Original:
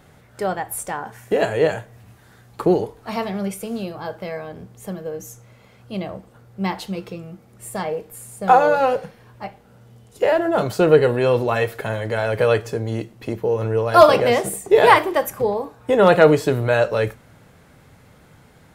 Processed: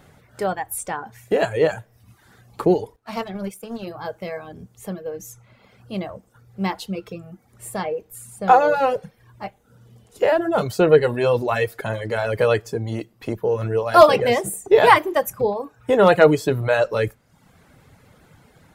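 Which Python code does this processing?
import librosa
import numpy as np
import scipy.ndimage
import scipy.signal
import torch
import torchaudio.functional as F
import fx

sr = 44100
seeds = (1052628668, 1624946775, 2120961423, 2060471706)

y = fx.power_curve(x, sr, exponent=1.4, at=(2.96, 3.87))
y = fx.dereverb_blind(y, sr, rt60_s=0.74)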